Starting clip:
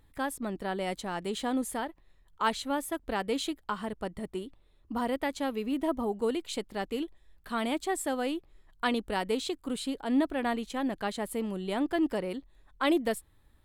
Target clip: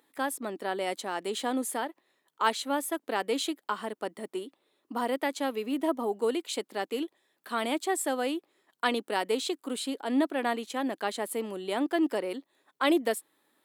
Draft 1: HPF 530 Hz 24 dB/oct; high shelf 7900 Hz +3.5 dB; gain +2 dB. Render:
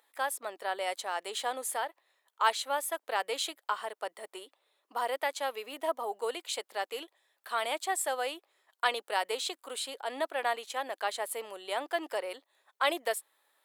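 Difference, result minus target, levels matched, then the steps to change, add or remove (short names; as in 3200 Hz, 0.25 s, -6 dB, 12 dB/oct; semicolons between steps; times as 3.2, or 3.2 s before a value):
250 Hz band -15.5 dB
change: HPF 260 Hz 24 dB/oct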